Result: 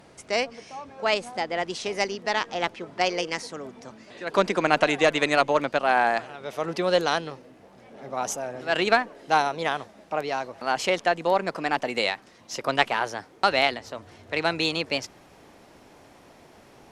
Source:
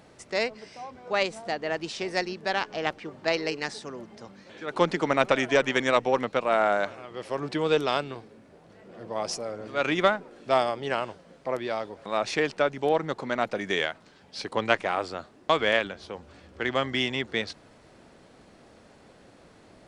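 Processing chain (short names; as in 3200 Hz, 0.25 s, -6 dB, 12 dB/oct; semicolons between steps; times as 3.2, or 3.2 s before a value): speed glide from 107% -> 128%; gain +2 dB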